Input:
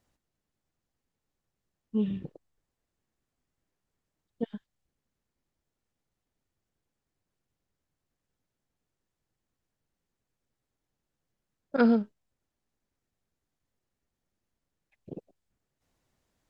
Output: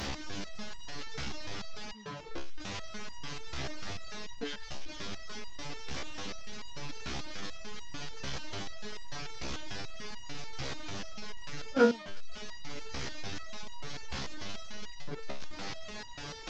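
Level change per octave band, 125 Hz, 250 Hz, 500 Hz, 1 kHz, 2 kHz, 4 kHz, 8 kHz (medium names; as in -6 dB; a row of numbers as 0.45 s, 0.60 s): +2.5 dB, -7.0 dB, +1.5 dB, +3.5 dB, +6.5 dB, +19.0 dB, no reading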